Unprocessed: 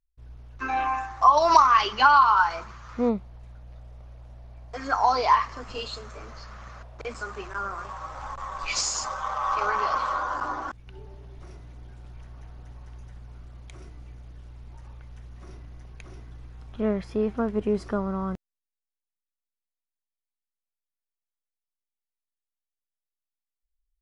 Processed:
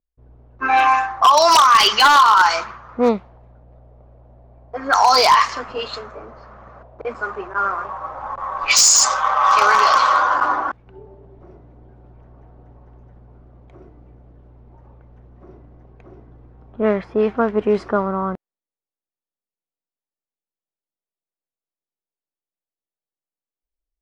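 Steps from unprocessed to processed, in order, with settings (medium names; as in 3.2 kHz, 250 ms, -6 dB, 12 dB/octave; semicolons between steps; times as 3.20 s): RIAA curve recording; level-controlled noise filter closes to 500 Hz, open at -18.5 dBFS; in parallel at -1 dB: compressor with a negative ratio -25 dBFS, ratio -1; on the sum: wavefolder -10 dBFS; trim +5 dB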